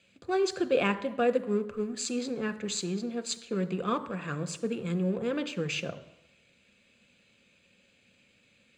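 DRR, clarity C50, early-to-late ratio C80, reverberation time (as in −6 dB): 11.5 dB, 16.0 dB, 17.5 dB, 0.85 s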